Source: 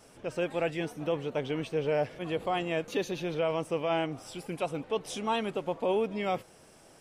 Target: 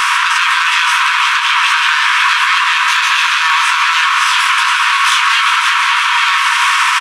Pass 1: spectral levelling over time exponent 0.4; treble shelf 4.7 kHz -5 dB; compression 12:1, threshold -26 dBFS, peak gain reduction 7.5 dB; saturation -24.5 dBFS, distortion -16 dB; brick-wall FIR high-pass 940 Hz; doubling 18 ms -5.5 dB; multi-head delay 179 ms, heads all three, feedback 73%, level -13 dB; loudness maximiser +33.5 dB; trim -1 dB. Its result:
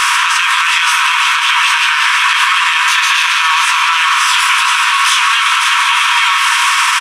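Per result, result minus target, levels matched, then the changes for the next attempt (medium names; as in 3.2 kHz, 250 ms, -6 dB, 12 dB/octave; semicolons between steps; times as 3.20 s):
saturation: distortion -7 dB; 8 kHz band +3.5 dB
change: saturation -31 dBFS, distortion -10 dB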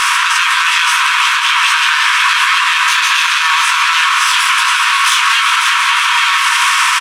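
8 kHz band +3.5 dB
change: treble shelf 4.7 kHz -13 dB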